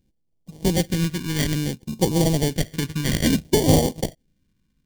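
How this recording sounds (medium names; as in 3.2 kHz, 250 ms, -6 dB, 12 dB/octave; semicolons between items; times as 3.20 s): a buzz of ramps at a fixed pitch in blocks of 16 samples; tremolo saw down 0.72 Hz, depth 35%; aliases and images of a low sample rate 1.3 kHz, jitter 0%; phasing stages 2, 0.59 Hz, lowest notch 690–1500 Hz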